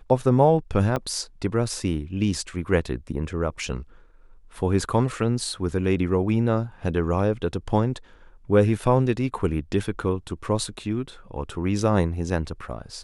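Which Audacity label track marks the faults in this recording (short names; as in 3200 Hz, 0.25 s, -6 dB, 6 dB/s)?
0.960000	0.970000	gap 6.6 ms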